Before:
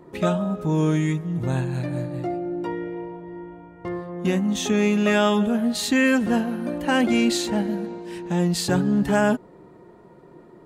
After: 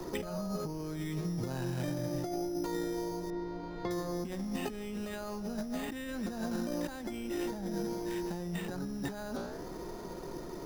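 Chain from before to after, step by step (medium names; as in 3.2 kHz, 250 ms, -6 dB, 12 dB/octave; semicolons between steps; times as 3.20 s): high-pass 150 Hz 6 dB/octave; careless resampling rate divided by 8×, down filtered, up hold; flange 0.8 Hz, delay 8.2 ms, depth 9.8 ms, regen +88%; compressor with a negative ratio -35 dBFS, ratio -1; added noise brown -49 dBFS; 3.30–3.91 s: distance through air 310 m; three bands compressed up and down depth 70%; trim -3 dB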